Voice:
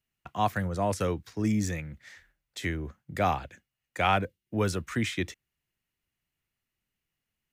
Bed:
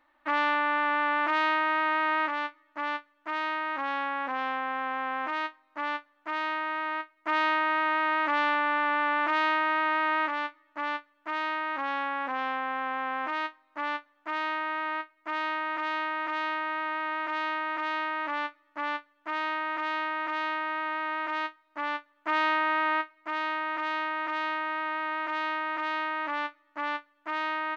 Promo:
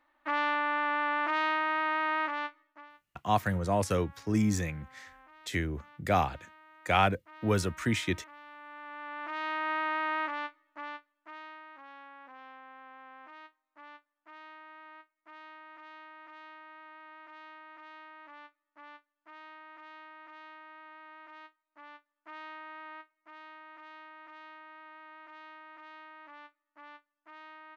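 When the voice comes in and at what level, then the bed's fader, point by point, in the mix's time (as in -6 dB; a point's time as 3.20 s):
2.90 s, 0.0 dB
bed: 2.61 s -3.5 dB
2.92 s -25.5 dB
8.44 s -25.5 dB
9.71 s -5 dB
10.45 s -5 dB
11.75 s -19.5 dB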